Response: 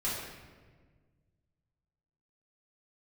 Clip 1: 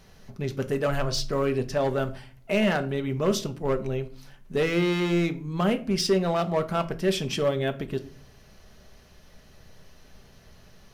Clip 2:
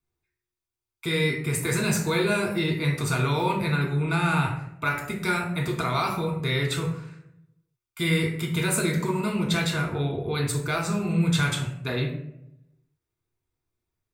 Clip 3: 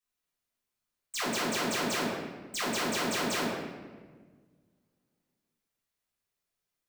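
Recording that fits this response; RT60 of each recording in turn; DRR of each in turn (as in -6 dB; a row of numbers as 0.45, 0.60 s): 3; 0.45, 0.80, 1.5 s; 7.0, -0.5, -9.5 dB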